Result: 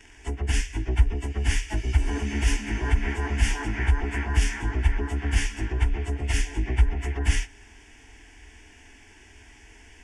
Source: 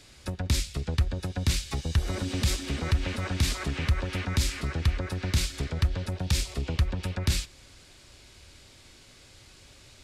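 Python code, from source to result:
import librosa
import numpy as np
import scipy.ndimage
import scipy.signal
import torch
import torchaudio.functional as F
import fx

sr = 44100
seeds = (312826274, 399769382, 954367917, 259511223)

y = fx.pitch_bins(x, sr, semitones=-4.5)
y = fx.fixed_phaser(y, sr, hz=810.0, stages=8)
y = y * 10.0 ** (8.5 / 20.0)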